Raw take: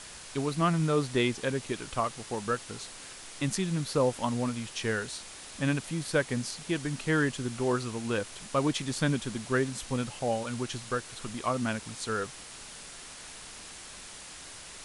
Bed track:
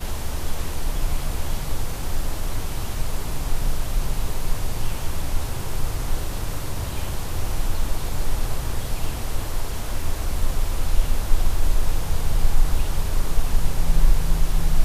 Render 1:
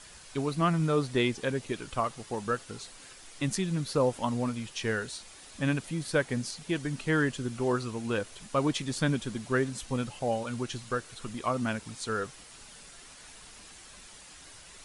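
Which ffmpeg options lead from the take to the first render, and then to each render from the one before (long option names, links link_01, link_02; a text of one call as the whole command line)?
ffmpeg -i in.wav -af "afftdn=noise_reduction=7:noise_floor=-46" out.wav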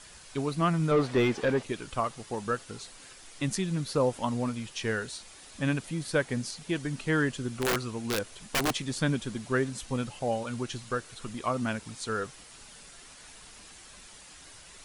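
ffmpeg -i in.wav -filter_complex "[0:a]asettb=1/sr,asplit=3[link_01][link_02][link_03];[link_01]atrim=end=0.914[link_04];[link_02]atrim=start=0.91:end=1.63,asetpts=PTS-STARTPTS,afade=type=in:duration=0.004:curve=qsin,afade=type=out:start_time=0.716:duration=0.004:curve=qsin,asplit=2[link_05][link_06];[link_06]highpass=frequency=720:poles=1,volume=21dB,asoftclip=type=tanh:threshold=-14.5dB[link_07];[link_05][link_07]amix=inputs=2:normalize=0,lowpass=frequency=1000:poles=1,volume=-6dB[link_08];[link_03]atrim=start=1.626[link_09];[link_04][link_08]acrossfade=duration=0.004:curve1=hsin:curve2=qsin[link_10];[link_10][link_09]acrossfade=duration=0.004:curve1=qsin:curve2=hsin,asplit=3[link_11][link_12][link_13];[link_11]afade=type=out:start_time=7.61:duration=0.02[link_14];[link_12]aeval=exprs='(mod(11.2*val(0)+1,2)-1)/11.2':channel_layout=same,afade=type=in:start_time=7.61:duration=0.02,afade=type=out:start_time=8.74:duration=0.02[link_15];[link_13]afade=type=in:start_time=8.74:duration=0.02[link_16];[link_14][link_15][link_16]amix=inputs=3:normalize=0" out.wav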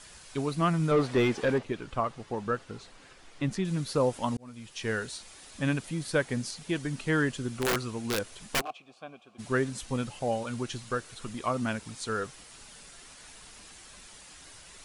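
ffmpeg -i in.wav -filter_complex "[0:a]asettb=1/sr,asplit=3[link_01][link_02][link_03];[link_01]atrim=end=1.584[link_04];[link_02]atrim=start=1.58:end=3.65,asetpts=PTS-STARTPTS,afade=type=in:duration=0.004:curve=qsin,afade=type=out:start_time=2.066:duration=0.004:curve=qsin,aemphasis=mode=reproduction:type=75fm[link_05];[link_03]atrim=start=3.646[link_06];[link_04][link_05]acrossfade=duration=0.004:curve1=hsin:curve2=qsin[link_07];[link_07][link_06]acrossfade=duration=0.004:curve1=qsin:curve2=hsin,asplit=3[link_08][link_09][link_10];[link_08]afade=type=out:start_time=8.6:duration=0.02[link_11];[link_09]asplit=3[link_12][link_13][link_14];[link_12]bandpass=frequency=730:width_type=q:width=8,volume=0dB[link_15];[link_13]bandpass=frequency=1090:width_type=q:width=8,volume=-6dB[link_16];[link_14]bandpass=frequency=2440:width_type=q:width=8,volume=-9dB[link_17];[link_15][link_16][link_17]amix=inputs=3:normalize=0,afade=type=in:start_time=8.6:duration=0.02,afade=type=out:start_time=9.38:duration=0.02[link_18];[link_10]afade=type=in:start_time=9.38:duration=0.02[link_19];[link_11][link_18][link_19]amix=inputs=3:normalize=0,asplit=2[link_20][link_21];[link_20]atrim=end=4.37,asetpts=PTS-STARTPTS,afade=type=out:start_time=4.366:duration=0.004:curve=hsin[link_22];[link_21]atrim=start=4.37,asetpts=PTS-STARTPTS,afade=type=in:duration=0.58[link_23];[link_22][link_23]concat=n=2:v=0:a=1" out.wav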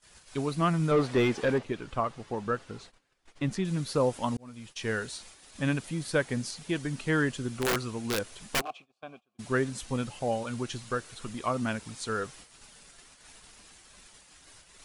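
ffmpeg -i in.wav -af "agate=range=-22dB:threshold=-49dB:ratio=16:detection=peak" out.wav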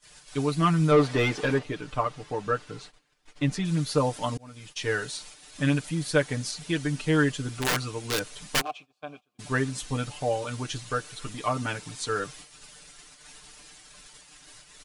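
ffmpeg -i in.wav -af "equalizer=frequency=4500:width=0.45:gain=3,aecho=1:1:6.7:0.79" out.wav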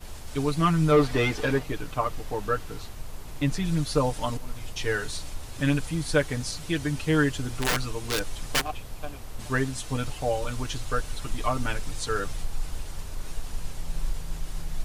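ffmpeg -i in.wav -i bed.wav -filter_complex "[1:a]volume=-13dB[link_01];[0:a][link_01]amix=inputs=2:normalize=0" out.wav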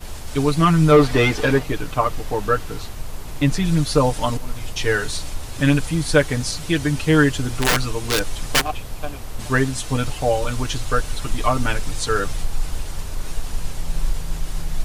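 ffmpeg -i in.wav -af "volume=7.5dB,alimiter=limit=-3dB:level=0:latency=1" out.wav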